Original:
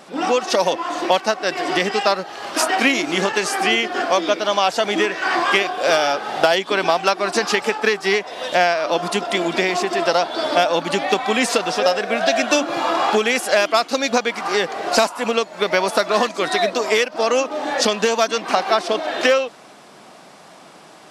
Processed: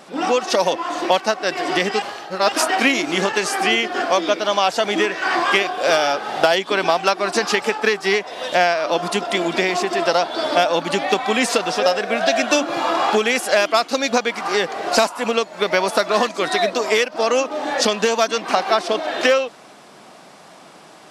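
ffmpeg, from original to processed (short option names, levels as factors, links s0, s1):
-filter_complex "[0:a]asplit=3[s0][s1][s2];[s0]atrim=end=2.022[s3];[s1]atrim=start=2.018:end=2.522,asetpts=PTS-STARTPTS,areverse[s4];[s2]atrim=start=2.518[s5];[s3][s4]acrossfade=d=0.004:c1=hsin:c2=hsin[s6];[s6][s5]acrossfade=d=0.004:c1=hsin:c2=hsin"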